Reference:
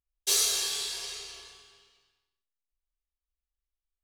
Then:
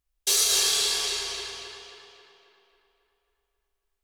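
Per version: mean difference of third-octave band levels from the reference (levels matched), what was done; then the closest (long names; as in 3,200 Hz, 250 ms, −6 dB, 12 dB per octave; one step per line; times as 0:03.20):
5.0 dB: brickwall limiter −20.5 dBFS, peak gain reduction 7 dB
tape delay 271 ms, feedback 58%, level −4 dB, low-pass 4,000 Hz
level +8 dB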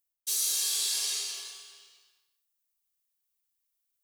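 6.5 dB: RIAA equalisation recording
reversed playback
downward compressor 12 to 1, threshold −26 dBFS, peak gain reduction 16 dB
reversed playback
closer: first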